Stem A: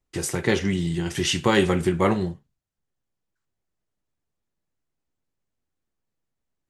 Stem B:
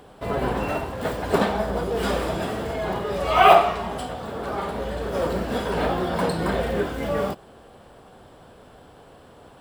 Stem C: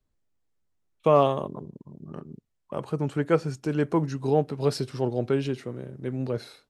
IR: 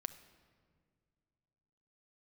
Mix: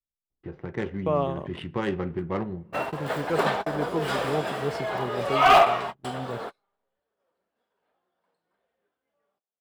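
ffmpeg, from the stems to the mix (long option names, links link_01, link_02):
-filter_complex "[0:a]lowpass=frequency=4100:width=0.5412,lowpass=frequency=4100:width=1.3066,adynamicsmooth=sensitivity=1:basefreq=1200,adelay=300,volume=-10.5dB,asplit=2[link_01][link_02];[link_02]volume=-8dB[link_03];[1:a]highpass=frequency=910:poles=1,adelay=2050,volume=2.5dB[link_04];[2:a]agate=range=-18dB:threshold=-36dB:ratio=16:detection=peak,volume=-6dB,asplit=2[link_05][link_06];[link_06]apad=whole_len=514198[link_07];[link_04][link_07]sidechaingate=range=-50dB:threshold=-46dB:ratio=16:detection=peak[link_08];[3:a]atrim=start_sample=2205[link_09];[link_03][link_09]afir=irnorm=-1:irlink=0[link_10];[link_01][link_08][link_05][link_10]amix=inputs=4:normalize=0,highshelf=frequency=4100:gain=-8,asoftclip=type=hard:threshold=-10.5dB"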